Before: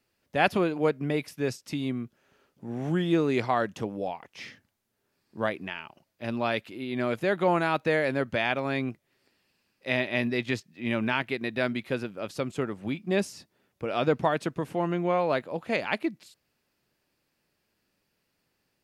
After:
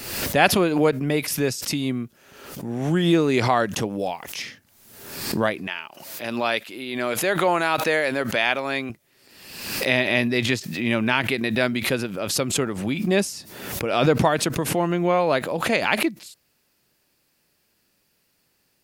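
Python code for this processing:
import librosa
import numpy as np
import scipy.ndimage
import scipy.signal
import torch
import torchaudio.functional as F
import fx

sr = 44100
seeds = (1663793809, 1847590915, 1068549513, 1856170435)

y = fx.high_shelf(x, sr, hz=3900.0, db=7.5, at=(3.99, 4.42))
y = fx.highpass(y, sr, hz=450.0, slope=6, at=(5.67, 8.9))
y = fx.high_shelf(y, sr, hz=4900.0, db=9.5)
y = fx.pre_swell(y, sr, db_per_s=55.0)
y = y * librosa.db_to_amplitude(5.0)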